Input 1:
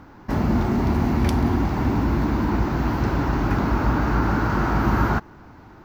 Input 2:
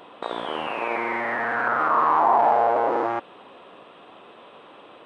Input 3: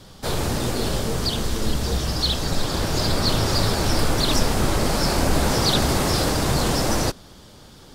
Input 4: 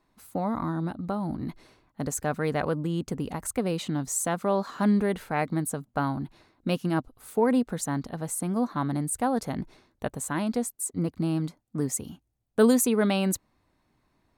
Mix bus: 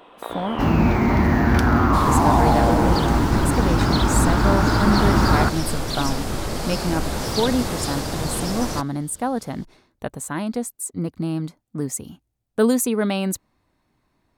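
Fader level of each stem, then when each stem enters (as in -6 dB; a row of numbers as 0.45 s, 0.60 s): +2.5 dB, -2.0 dB, -5.5 dB, +2.0 dB; 0.30 s, 0.00 s, 1.70 s, 0.00 s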